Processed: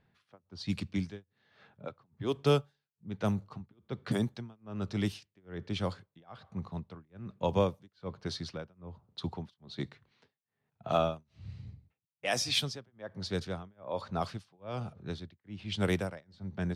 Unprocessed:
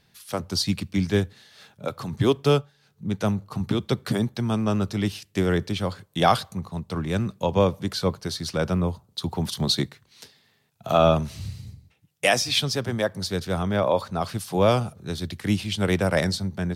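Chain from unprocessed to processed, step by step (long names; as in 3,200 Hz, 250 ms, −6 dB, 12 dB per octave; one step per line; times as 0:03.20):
amplitude tremolo 1.2 Hz, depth 99%
low-pass that shuts in the quiet parts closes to 1,800 Hz, open at −20 dBFS
level −6 dB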